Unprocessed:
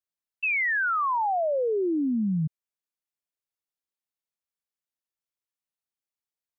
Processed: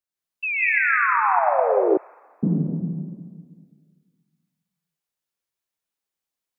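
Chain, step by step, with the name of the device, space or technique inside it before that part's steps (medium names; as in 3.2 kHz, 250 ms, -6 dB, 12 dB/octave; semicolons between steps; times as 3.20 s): stairwell (reverberation RT60 1.8 s, pre-delay 113 ms, DRR -5 dB); 1.97–2.43 s: Bessel high-pass 1.4 kHz, order 6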